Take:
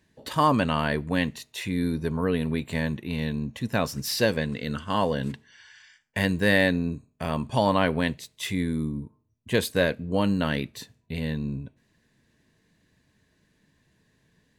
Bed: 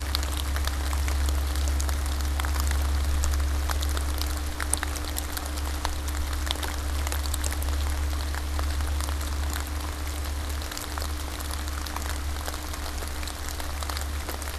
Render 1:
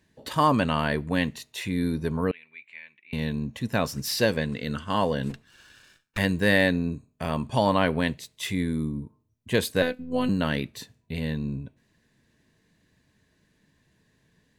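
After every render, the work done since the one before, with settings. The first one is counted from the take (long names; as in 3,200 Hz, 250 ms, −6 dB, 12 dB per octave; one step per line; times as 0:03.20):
0:02.31–0:03.13: resonant band-pass 2,300 Hz, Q 10
0:05.30–0:06.18: lower of the sound and its delayed copy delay 0.74 ms
0:09.82–0:10.29: phases set to zero 252 Hz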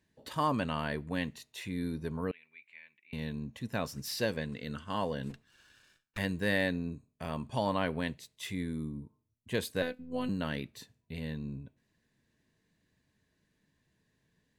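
level −9 dB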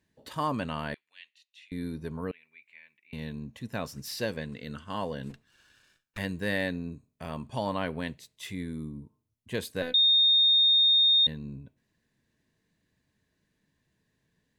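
0:00.94–0:01.72: four-pole ladder band-pass 3,300 Hz, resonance 40%
0:09.94–0:11.27: beep over 3,680 Hz −18 dBFS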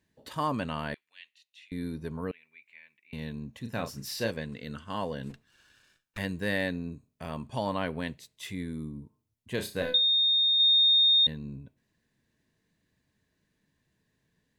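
0:03.60–0:04.31: double-tracking delay 35 ms −7 dB
0:09.55–0:10.60: flutter between parallel walls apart 5.8 metres, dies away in 0.28 s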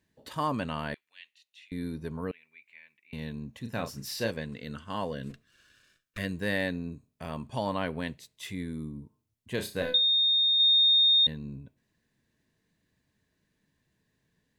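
0:05.11–0:06.32: Butterworth band-reject 850 Hz, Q 2.9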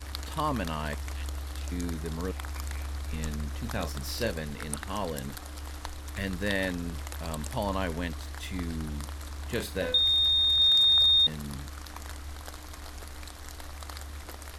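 mix in bed −10 dB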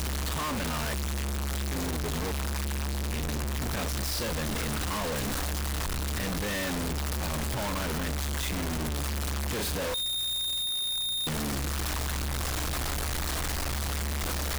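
sign of each sample alone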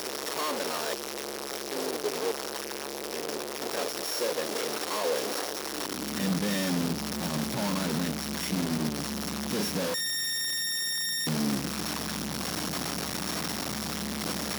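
samples sorted by size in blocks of 8 samples
high-pass filter sweep 420 Hz → 190 Hz, 0:05.59–0:06.28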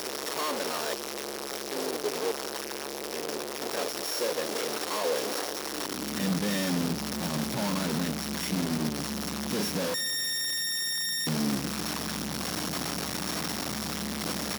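repeating echo 193 ms, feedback 58%, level −22 dB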